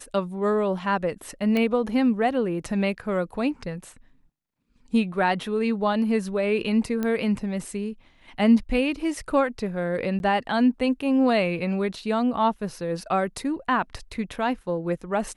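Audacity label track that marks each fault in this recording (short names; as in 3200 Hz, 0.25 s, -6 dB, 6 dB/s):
1.570000	1.570000	pop -14 dBFS
7.030000	7.030000	pop -15 dBFS
10.190000	10.200000	gap 11 ms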